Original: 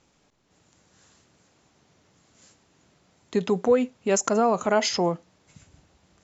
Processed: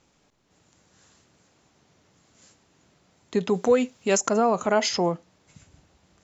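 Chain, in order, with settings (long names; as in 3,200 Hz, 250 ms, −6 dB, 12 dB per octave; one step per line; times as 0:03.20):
0:03.54–0:04.17: high-shelf EQ 3,000 Hz +10.5 dB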